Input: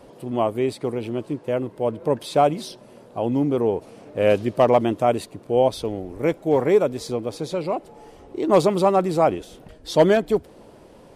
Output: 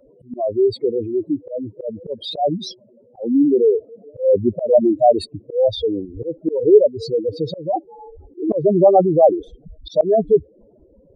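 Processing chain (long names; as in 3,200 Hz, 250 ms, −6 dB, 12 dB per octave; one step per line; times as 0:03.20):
expanding power law on the bin magnitudes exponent 3.6
noise reduction from a noise print of the clip's start 12 dB
volume swells 204 ms
level +7.5 dB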